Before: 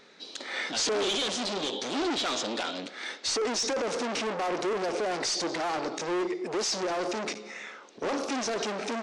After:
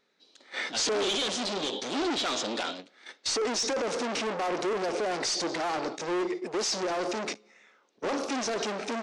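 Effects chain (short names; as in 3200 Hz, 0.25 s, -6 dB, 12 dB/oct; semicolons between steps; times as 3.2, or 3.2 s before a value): gate -34 dBFS, range -17 dB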